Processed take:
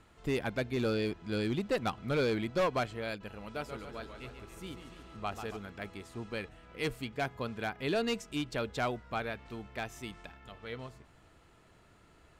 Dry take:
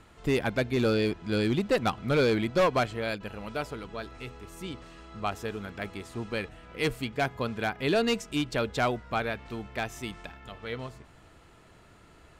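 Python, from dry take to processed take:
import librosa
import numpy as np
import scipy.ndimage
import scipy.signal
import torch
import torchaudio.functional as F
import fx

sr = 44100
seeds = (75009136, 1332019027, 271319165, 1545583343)

y = fx.echo_warbled(x, sr, ms=141, feedback_pct=61, rate_hz=2.8, cents=129, wet_db=-8.0, at=(3.4, 5.57))
y = y * librosa.db_to_amplitude(-6.0)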